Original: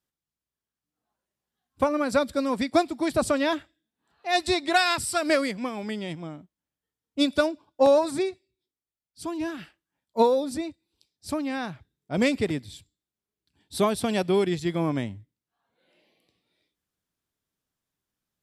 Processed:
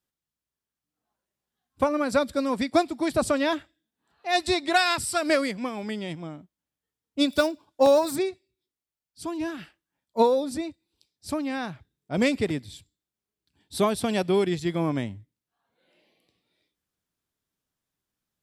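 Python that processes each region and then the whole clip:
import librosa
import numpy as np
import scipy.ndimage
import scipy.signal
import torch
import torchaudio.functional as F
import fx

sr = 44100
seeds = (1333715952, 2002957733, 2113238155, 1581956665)

y = fx.chain(x, sr, fx.high_shelf(hz=5400.0, db=10.5),
    fx.resample_linear(factor=2), at=(7.29, 8.16))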